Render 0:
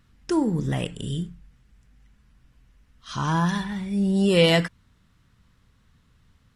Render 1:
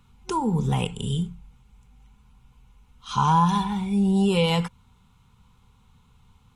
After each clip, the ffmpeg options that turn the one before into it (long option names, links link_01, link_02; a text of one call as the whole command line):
ffmpeg -i in.wav -filter_complex "[0:a]acrossover=split=140[link_01][link_02];[link_02]acompressor=threshold=-22dB:ratio=6[link_03];[link_01][link_03]amix=inputs=2:normalize=0,superequalizer=6b=0.316:8b=0.355:9b=2.51:11b=0.282:14b=0.562,volume=3dB" out.wav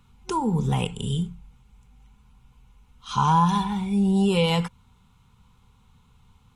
ffmpeg -i in.wav -af anull out.wav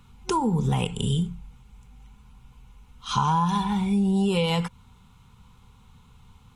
ffmpeg -i in.wav -af "acompressor=threshold=-26dB:ratio=3,volume=4.5dB" out.wav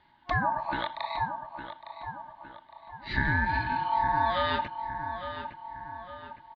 ffmpeg -i in.wav -filter_complex "[0:a]highpass=frequency=180:width_type=q:width=0.5412,highpass=frequency=180:width_type=q:width=1.307,lowpass=frequency=3500:width_type=q:width=0.5176,lowpass=frequency=3500:width_type=q:width=0.7071,lowpass=frequency=3500:width_type=q:width=1.932,afreqshift=-180,asplit=2[link_01][link_02];[link_02]adelay=860,lowpass=frequency=2300:poles=1,volume=-9dB,asplit=2[link_03][link_04];[link_04]adelay=860,lowpass=frequency=2300:poles=1,volume=0.49,asplit=2[link_05][link_06];[link_06]adelay=860,lowpass=frequency=2300:poles=1,volume=0.49,asplit=2[link_07][link_08];[link_08]adelay=860,lowpass=frequency=2300:poles=1,volume=0.49,asplit=2[link_09][link_10];[link_10]adelay=860,lowpass=frequency=2300:poles=1,volume=0.49,asplit=2[link_11][link_12];[link_12]adelay=860,lowpass=frequency=2300:poles=1,volume=0.49[link_13];[link_01][link_03][link_05][link_07][link_09][link_11][link_13]amix=inputs=7:normalize=0,aeval=exprs='val(0)*sin(2*PI*900*n/s)':channel_layout=same" out.wav